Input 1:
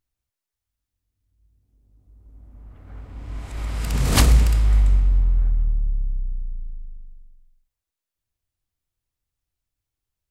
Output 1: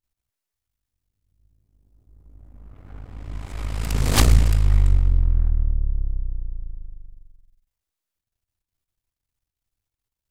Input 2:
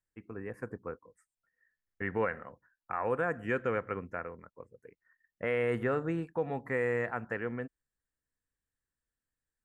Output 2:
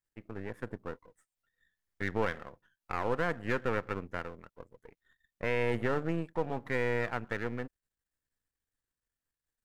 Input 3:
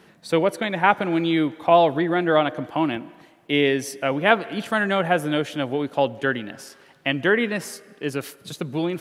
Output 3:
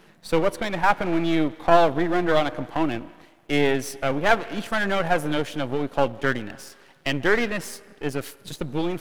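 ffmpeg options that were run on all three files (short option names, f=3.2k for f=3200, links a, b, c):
-af "aeval=exprs='if(lt(val(0),0),0.251*val(0),val(0))':c=same,volume=2.5dB"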